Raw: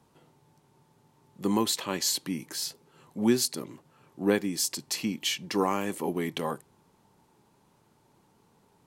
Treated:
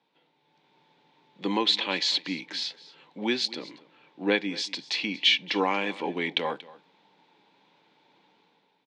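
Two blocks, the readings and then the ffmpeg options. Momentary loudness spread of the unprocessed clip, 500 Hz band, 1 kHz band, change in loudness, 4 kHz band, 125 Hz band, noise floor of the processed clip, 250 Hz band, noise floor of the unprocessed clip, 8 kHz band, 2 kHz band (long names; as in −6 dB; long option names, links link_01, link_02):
9 LU, −0.5 dB, +2.0 dB, +2.0 dB, +7.0 dB, −6.0 dB, −70 dBFS, −3.0 dB, −66 dBFS, −12.0 dB, +8.5 dB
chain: -af "dynaudnorm=framelen=160:gausssize=7:maxgain=10dB,highpass=frequency=220:width=0.5412,highpass=frequency=220:width=1.3066,equalizer=frequency=230:width_type=q:width=4:gain=-10,equalizer=frequency=380:width_type=q:width=4:gain=-9,equalizer=frequency=650:width_type=q:width=4:gain=-5,equalizer=frequency=1200:width_type=q:width=4:gain=-9,equalizer=frequency=2300:width_type=q:width=4:gain=6,equalizer=frequency=3600:width_type=q:width=4:gain=8,lowpass=frequency=4300:width=0.5412,lowpass=frequency=4300:width=1.3066,aecho=1:1:233:0.106,volume=-4dB"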